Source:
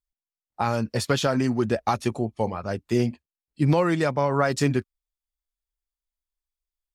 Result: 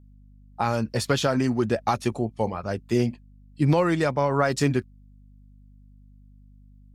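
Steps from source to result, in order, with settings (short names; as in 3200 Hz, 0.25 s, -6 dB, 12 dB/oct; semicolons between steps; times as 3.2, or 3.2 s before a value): hum 50 Hz, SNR 25 dB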